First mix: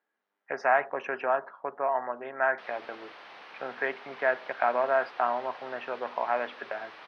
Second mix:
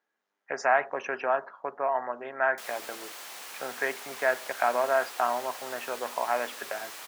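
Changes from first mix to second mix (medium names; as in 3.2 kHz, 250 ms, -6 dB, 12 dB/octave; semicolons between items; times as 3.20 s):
background: remove distance through air 170 m; master: remove boxcar filter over 6 samples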